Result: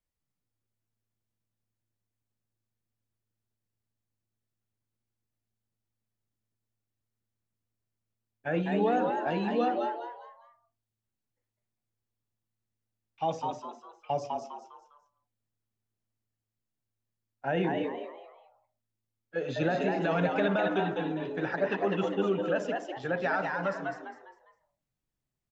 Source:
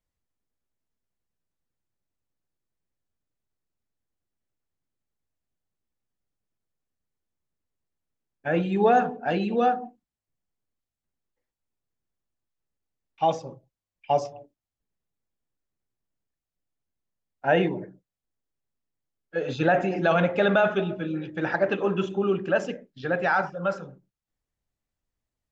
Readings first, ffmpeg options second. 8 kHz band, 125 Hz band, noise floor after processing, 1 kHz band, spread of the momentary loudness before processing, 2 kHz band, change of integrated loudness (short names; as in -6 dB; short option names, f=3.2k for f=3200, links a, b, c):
n/a, -4.5 dB, under -85 dBFS, -5.5 dB, 14 LU, -6.0 dB, -5.5 dB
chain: -filter_complex "[0:a]acrossover=split=300[a][b];[b]alimiter=limit=-16.5dB:level=0:latency=1:release=155[c];[a][c]amix=inputs=2:normalize=0,asplit=5[d][e][f][g][h];[e]adelay=202,afreqshift=110,volume=-4dB[i];[f]adelay=404,afreqshift=220,volume=-13.4dB[j];[g]adelay=606,afreqshift=330,volume=-22.7dB[k];[h]adelay=808,afreqshift=440,volume=-32.1dB[l];[d][i][j][k][l]amix=inputs=5:normalize=0,volume=-4.5dB"